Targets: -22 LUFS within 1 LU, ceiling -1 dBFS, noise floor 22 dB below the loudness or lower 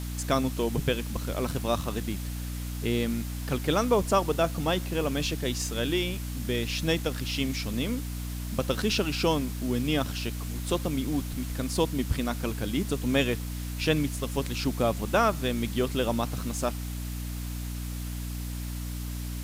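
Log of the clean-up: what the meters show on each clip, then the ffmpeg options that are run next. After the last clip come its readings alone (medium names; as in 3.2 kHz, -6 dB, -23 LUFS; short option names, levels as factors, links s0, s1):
hum 60 Hz; highest harmonic 300 Hz; hum level -32 dBFS; noise floor -34 dBFS; noise floor target -51 dBFS; loudness -29.0 LUFS; peak level -10.0 dBFS; loudness target -22.0 LUFS
-> -af "bandreject=f=60:t=h:w=4,bandreject=f=120:t=h:w=4,bandreject=f=180:t=h:w=4,bandreject=f=240:t=h:w=4,bandreject=f=300:t=h:w=4"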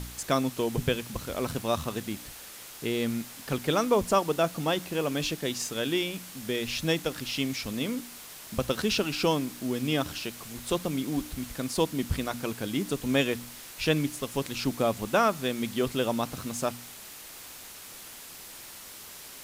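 hum not found; noise floor -45 dBFS; noise floor target -52 dBFS
-> -af "afftdn=nr=7:nf=-45"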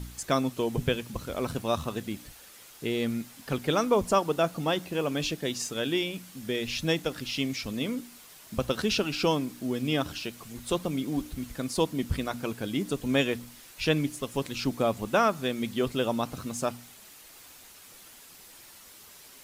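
noise floor -51 dBFS; noise floor target -52 dBFS
-> -af "afftdn=nr=6:nf=-51"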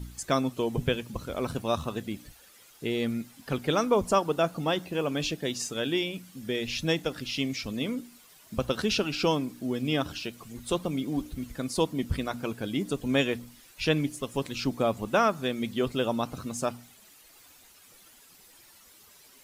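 noise floor -56 dBFS; loudness -29.5 LUFS; peak level -11.0 dBFS; loudness target -22.0 LUFS
-> -af "volume=2.37"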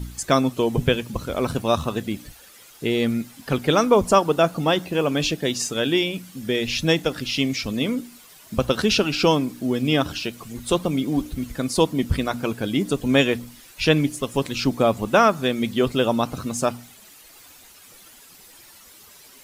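loudness -22.5 LUFS; peak level -3.5 dBFS; noise floor -48 dBFS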